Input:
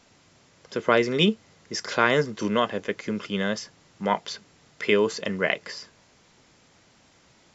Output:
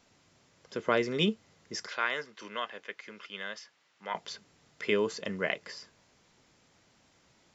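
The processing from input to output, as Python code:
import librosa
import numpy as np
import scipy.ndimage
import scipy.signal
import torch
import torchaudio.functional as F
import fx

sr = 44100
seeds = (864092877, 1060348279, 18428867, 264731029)

y = fx.bandpass_q(x, sr, hz=2200.0, q=0.69, at=(1.87, 4.15))
y = y * 10.0 ** (-7.0 / 20.0)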